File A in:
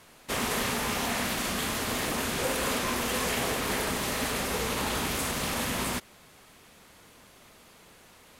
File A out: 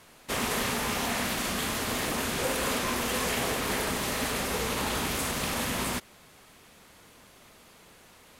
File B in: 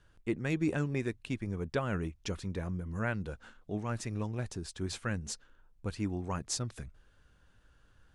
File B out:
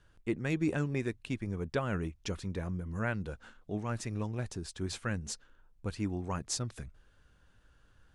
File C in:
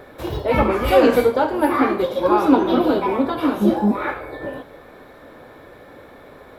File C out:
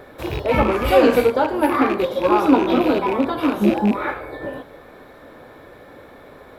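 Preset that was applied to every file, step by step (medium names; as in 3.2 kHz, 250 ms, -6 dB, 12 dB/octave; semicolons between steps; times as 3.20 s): rattle on loud lows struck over -27 dBFS, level -20 dBFS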